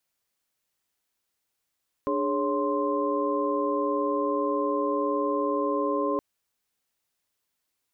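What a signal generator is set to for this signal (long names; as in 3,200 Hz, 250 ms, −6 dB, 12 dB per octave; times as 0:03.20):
held notes D4/G#4/C#5/C6 sine, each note −29 dBFS 4.12 s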